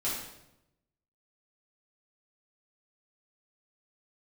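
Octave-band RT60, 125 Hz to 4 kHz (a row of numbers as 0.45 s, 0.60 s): 1.2 s, 1.0 s, 0.95 s, 0.80 s, 0.75 s, 0.70 s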